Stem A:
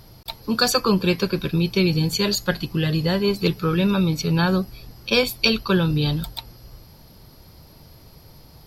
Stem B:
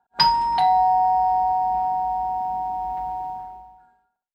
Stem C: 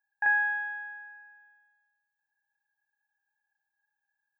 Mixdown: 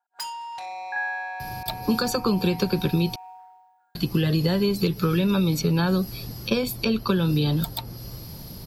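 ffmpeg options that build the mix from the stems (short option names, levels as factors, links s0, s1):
-filter_complex "[0:a]acompressor=threshold=0.1:ratio=6,lowshelf=f=380:g=10,acrossover=split=94|280|1800[s0][s1][s2][s3];[s0]acompressor=threshold=0.00447:ratio=4[s4];[s1]acompressor=threshold=0.0447:ratio=4[s5];[s2]acompressor=threshold=0.0447:ratio=4[s6];[s3]acompressor=threshold=0.01:ratio=4[s7];[s4][s5][s6][s7]amix=inputs=4:normalize=0,adelay=1400,volume=1.26,asplit=3[s8][s9][s10];[s8]atrim=end=3.16,asetpts=PTS-STARTPTS,afade=t=out:st=3.156:d=0.004:c=hsin[s11];[s9]atrim=start=3.16:end=3.95,asetpts=PTS-STARTPTS,volume=0[s12];[s10]atrim=start=3.95,asetpts=PTS-STARTPTS,afade=t=in:d=0.004:c=hsin[s13];[s11][s12][s13]concat=n=3:v=0:a=1[s14];[1:a]highpass=510,equalizer=f=1500:w=0.85:g=6,asoftclip=type=tanh:threshold=0.119,volume=0.188[s15];[2:a]adelay=700,volume=0.531[s16];[s14][s15][s16]amix=inputs=3:normalize=0,highshelf=f=4000:g=10.5"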